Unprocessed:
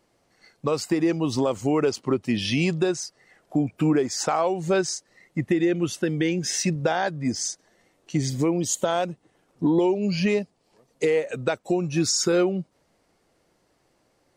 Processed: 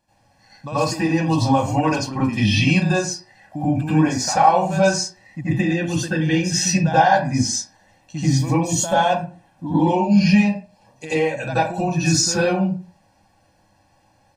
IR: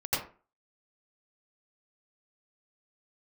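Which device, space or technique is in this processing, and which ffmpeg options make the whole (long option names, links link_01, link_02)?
microphone above a desk: -filter_complex "[0:a]aecho=1:1:1.2:0.89[link_01];[1:a]atrim=start_sample=2205[link_02];[link_01][link_02]afir=irnorm=-1:irlink=0,volume=-3dB"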